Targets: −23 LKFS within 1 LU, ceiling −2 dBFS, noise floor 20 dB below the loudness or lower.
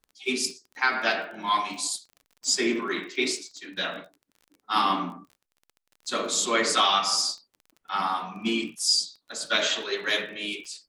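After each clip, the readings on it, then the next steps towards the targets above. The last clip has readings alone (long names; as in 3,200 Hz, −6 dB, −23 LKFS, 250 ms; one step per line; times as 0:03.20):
crackle rate 28 per second; integrated loudness −26.0 LKFS; sample peak −8.0 dBFS; target loudness −23.0 LKFS
→ click removal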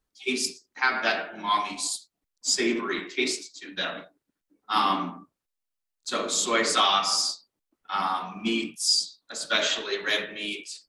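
crackle rate 0 per second; integrated loudness −26.0 LKFS; sample peak −8.0 dBFS; target loudness −23.0 LKFS
→ level +3 dB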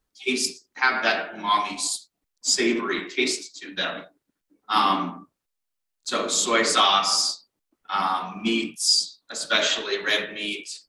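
integrated loudness −23.0 LKFS; sample peak −5.0 dBFS; background noise floor −81 dBFS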